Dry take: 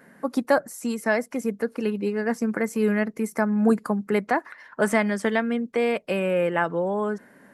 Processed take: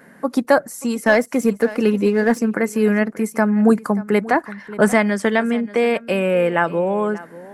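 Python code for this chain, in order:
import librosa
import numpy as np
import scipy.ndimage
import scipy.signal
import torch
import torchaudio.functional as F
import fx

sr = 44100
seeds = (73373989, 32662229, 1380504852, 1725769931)

y = x + 10.0 ** (-18.5 / 20.0) * np.pad(x, (int(583 * sr / 1000.0), 0))[:len(x)]
y = fx.leveller(y, sr, passes=1, at=(1.06, 2.39))
y = fx.low_shelf(y, sr, hz=210.0, db=8.5, at=(4.35, 4.93))
y = y * librosa.db_to_amplitude(5.5)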